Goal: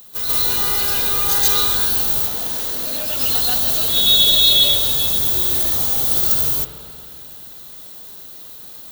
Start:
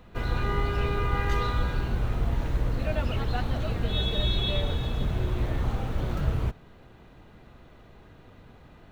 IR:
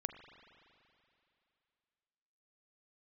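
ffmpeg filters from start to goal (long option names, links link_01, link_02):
-filter_complex "[0:a]aemphasis=mode=production:type=bsi,asettb=1/sr,asplit=3[link_01][link_02][link_03];[link_01]atrim=end=2.124[link_04];[link_02]atrim=start=2.12:end=3.08,asetpts=PTS-STARTPTS,afade=type=in:duration=0.004:curve=qsin,afade=type=out:start_time=0.956:duration=0.004:curve=qsin,acrossover=split=180|5000[link_05][link_06][link_07];[link_05]acompressor=threshold=-48dB:ratio=4[link_08];[link_06]acompressor=threshold=-34dB:ratio=4[link_09];[link_07]acompressor=threshold=-46dB:ratio=4[link_10];[link_08][link_09][link_10]amix=inputs=3:normalize=0[link_11];[link_03]atrim=start=3.076[link_12];[link_04][link_11]acrossfade=duration=0.004:curve1=hsin:curve2=qsin[link_13];[link_13][link_12]acrossfade=duration=0.004:curve1=qsin:curve2=hsin,aexciter=amount=6.3:drive=5.9:freq=3400,asplit=2[link_14][link_15];[1:a]atrim=start_sample=2205,adelay=137[link_16];[link_15][link_16]afir=irnorm=-1:irlink=0,volume=6.5dB[link_17];[link_14][link_17]amix=inputs=2:normalize=0,volume=-2dB"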